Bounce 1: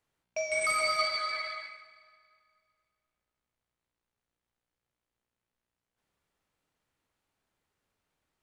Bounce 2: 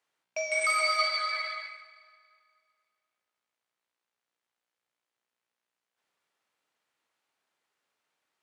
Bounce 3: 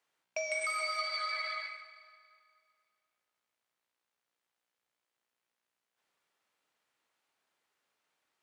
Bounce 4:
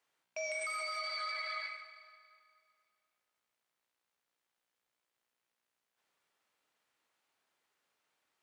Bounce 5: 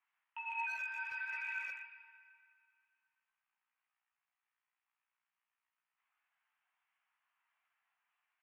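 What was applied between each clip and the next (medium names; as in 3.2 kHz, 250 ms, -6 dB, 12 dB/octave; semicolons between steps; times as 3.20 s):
frequency weighting A; trim +1.5 dB
compression 6:1, threshold -32 dBFS, peak gain reduction 10 dB
peak limiter -30.5 dBFS, peak gain reduction 6.5 dB
chorus voices 6, 0.55 Hz, delay 17 ms, depth 1.7 ms; mistuned SSB +290 Hz 480–2600 Hz; speakerphone echo 120 ms, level -7 dB; trim +1 dB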